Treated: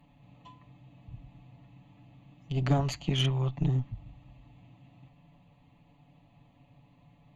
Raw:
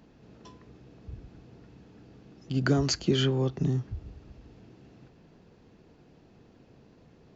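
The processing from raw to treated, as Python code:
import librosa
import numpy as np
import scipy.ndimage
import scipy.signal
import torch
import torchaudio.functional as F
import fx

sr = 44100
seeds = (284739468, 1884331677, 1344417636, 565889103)

y = fx.fixed_phaser(x, sr, hz=1500.0, stages=6)
y = y + 0.83 * np.pad(y, (int(7.0 * sr / 1000.0), 0))[:len(y)]
y = fx.cheby_harmonics(y, sr, harmonics=(4,), levels_db=(-13,), full_scale_db=-13.5)
y = y * 10.0 ** (-2.0 / 20.0)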